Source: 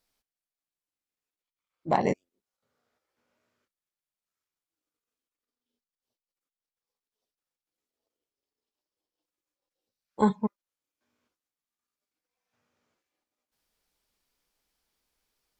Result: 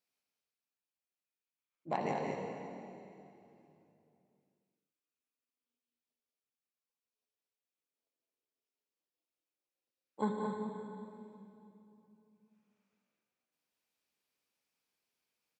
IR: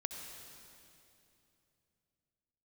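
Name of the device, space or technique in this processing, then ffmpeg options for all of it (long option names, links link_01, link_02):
stadium PA: -filter_complex "[0:a]highpass=130,equalizer=frequency=2500:width_type=o:width=0.32:gain=6.5,aecho=1:1:177.8|224.5:0.447|0.501[link_01];[1:a]atrim=start_sample=2205[link_02];[link_01][link_02]afir=irnorm=-1:irlink=0,volume=-9dB"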